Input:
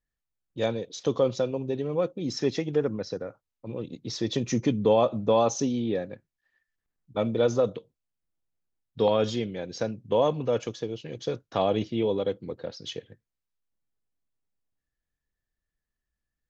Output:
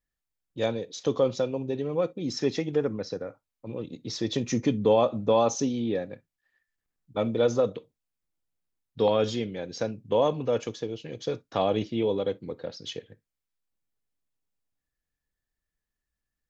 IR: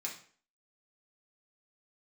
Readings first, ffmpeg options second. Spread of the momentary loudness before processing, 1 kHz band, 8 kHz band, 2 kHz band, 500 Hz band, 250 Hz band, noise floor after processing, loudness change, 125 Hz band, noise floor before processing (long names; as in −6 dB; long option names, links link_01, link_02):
14 LU, 0.0 dB, can't be measured, 0.0 dB, 0.0 dB, −0.5 dB, below −85 dBFS, −0.5 dB, −1.5 dB, below −85 dBFS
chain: -filter_complex "[0:a]asplit=2[link_01][link_02];[1:a]atrim=start_sample=2205,atrim=end_sample=3087[link_03];[link_02][link_03]afir=irnorm=-1:irlink=0,volume=-13.5dB[link_04];[link_01][link_04]amix=inputs=2:normalize=0,volume=-1dB"